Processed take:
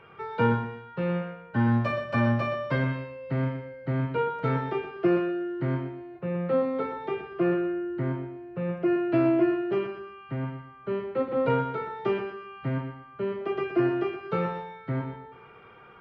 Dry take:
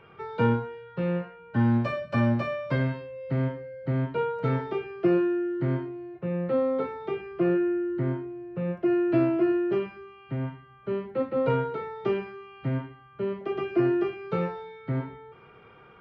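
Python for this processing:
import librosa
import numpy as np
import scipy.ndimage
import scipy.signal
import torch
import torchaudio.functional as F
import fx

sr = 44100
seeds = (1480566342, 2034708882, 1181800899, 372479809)

p1 = fx.peak_eq(x, sr, hz=1400.0, db=4.0, octaves=2.7)
p2 = p1 + fx.echo_feedback(p1, sr, ms=121, feedback_pct=28, wet_db=-9.5, dry=0)
y = p2 * librosa.db_to_amplitude(-1.5)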